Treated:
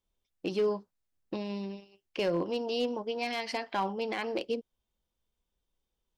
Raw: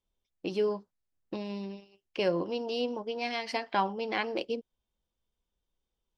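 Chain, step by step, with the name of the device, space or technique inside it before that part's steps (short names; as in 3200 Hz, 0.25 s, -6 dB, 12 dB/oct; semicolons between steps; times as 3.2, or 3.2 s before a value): limiter into clipper (limiter -21 dBFS, peak gain reduction 6 dB; hard clip -23.5 dBFS, distortion -25 dB); gain +1 dB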